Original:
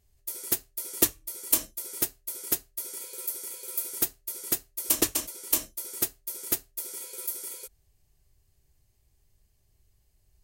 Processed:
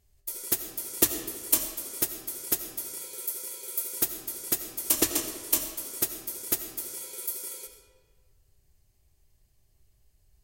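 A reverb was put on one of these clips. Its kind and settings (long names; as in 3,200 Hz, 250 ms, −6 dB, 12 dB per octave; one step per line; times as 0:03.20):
comb and all-pass reverb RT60 1.5 s, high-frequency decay 0.7×, pre-delay 45 ms, DRR 6.5 dB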